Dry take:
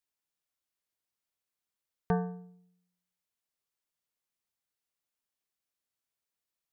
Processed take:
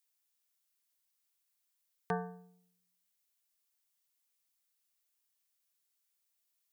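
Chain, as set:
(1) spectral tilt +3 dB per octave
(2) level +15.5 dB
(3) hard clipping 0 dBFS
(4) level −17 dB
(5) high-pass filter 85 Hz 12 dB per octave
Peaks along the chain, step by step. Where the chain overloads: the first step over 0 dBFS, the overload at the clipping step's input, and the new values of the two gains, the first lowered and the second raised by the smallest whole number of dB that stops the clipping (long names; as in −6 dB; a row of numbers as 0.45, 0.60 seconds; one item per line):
−18.5, −3.0, −3.0, −20.0, −19.5 dBFS
no step passes full scale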